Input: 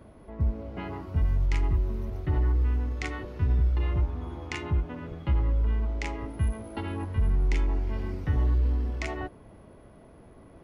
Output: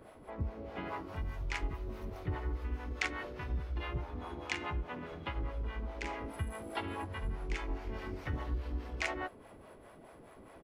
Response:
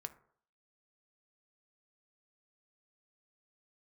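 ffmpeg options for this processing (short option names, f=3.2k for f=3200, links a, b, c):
-filter_complex "[0:a]asplit=4[a][b][c][d];[b]asetrate=33038,aresample=44100,atempo=1.33484,volume=-11dB[e];[c]asetrate=37084,aresample=44100,atempo=1.18921,volume=-13dB[f];[d]asetrate=52444,aresample=44100,atempo=0.840896,volume=-11dB[g];[a][e][f][g]amix=inputs=4:normalize=0,bass=f=250:g=-7,treble=f=4k:g=-3,acompressor=threshold=-38dB:ratio=1.5,acrossover=split=480[h][i];[h]aeval=exprs='val(0)*(1-0.7/2+0.7/2*cos(2*PI*4.8*n/s))':c=same[j];[i]aeval=exprs='val(0)*(1-0.7/2-0.7/2*cos(2*PI*4.8*n/s))':c=same[k];[j][k]amix=inputs=2:normalize=0,tiltshelf=f=700:g=-3,volume=3dB"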